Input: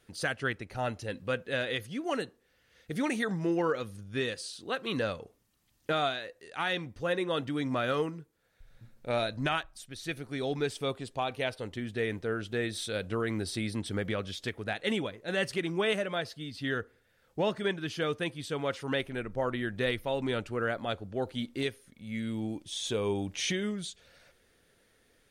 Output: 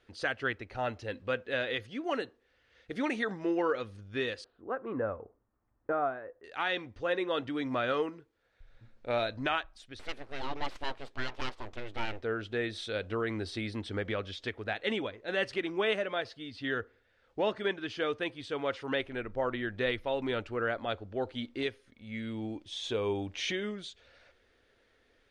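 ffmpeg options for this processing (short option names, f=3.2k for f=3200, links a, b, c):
-filter_complex "[0:a]asettb=1/sr,asplit=3[a][b][c];[a]atrim=end=4.444[d];[b]atrim=start=4.44:end=6.44,asetpts=PTS-STARTPTS,afade=t=in:d=0.004:c=qsin,afade=t=out:st=1.996:d=0.004:c=qsin,lowpass=f=1.4k:w=0.5412,lowpass=f=1.4k:w=1.3066[e];[c]atrim=start=6.436[f];[d][e]acrossfade=d=0.004:c1=hsin:c2=qsin[g];[g][f]acrossfade=d=0.004:c1=qsin:c2=hsin,asettb=1/sr,asplit=3[h][i][j];[h]atrim=end=9.994[k];[i]atrim=start=9.99:end=12.22,asetpts=PTS-STARTPTS,afade=t=in:d=0.004:c=qsin,afade=t=out:st=2.226:d=0.004:c=qsin,aeval=exprs='abs(val(0))':c=same[l];[j]atrim=start=12.216[m];[k][l]acrossfade=d=0.004:c1=hsin:c2=qsin[n];[n][m]acrossfade=d=0.004:c1=qsin:c2=hsin,lowpass=4.1k,equalizer=f=160:t=o:w=0.58:g=-13.5"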